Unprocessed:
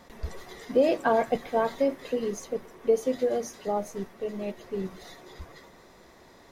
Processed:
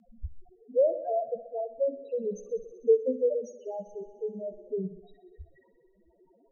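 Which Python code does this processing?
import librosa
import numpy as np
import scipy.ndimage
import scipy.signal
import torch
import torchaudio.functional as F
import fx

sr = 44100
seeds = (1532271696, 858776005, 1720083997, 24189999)

p1 = fx.peak_eq(x, sr, hz=150.0, db=-13.0, octaves=0.67, at=(3.89, 4.58))
p2 = fx.spec_topn(p1, sr, count=2)
p3 = fx.ladder_lowpass(p2, sr, hz=650.0, resonance_pct=70, at=(0.49, 1.78))
p4 = p3 + fx.echo_thinned(p3, sr, ms=63, feedback_pct=77, hz=170.0, wet_db=-15, dry=0)
p5 = fx.rotary(p4, sr, hz=0.6)
y = p5 * librosa.db_to_amplitude(3.0)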